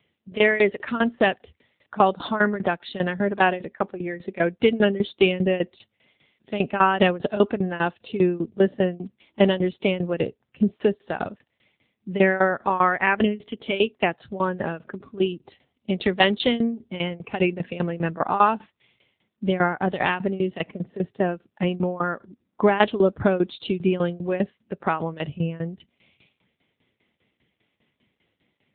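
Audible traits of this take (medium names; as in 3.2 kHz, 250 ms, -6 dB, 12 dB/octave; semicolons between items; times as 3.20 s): tremolo saw down 5 Hz, depth 90%; AMR-NB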